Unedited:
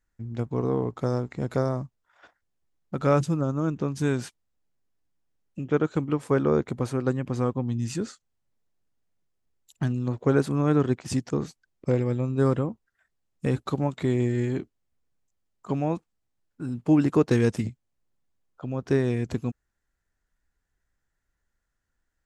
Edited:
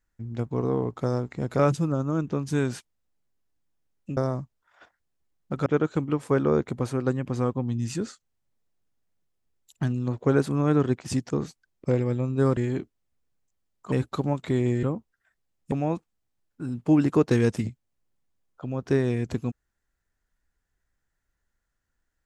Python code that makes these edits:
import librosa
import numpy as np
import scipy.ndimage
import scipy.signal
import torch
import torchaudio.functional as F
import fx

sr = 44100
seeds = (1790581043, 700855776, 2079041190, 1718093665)

y = fx.edit(x, sr, fx.move(start_s=1.59, length_s=1.49, to_s=5.66),
    fx.swap(start_s=12.57, length_s=0.89, other_s=14.37, other_length_s=1.35), tone=tone)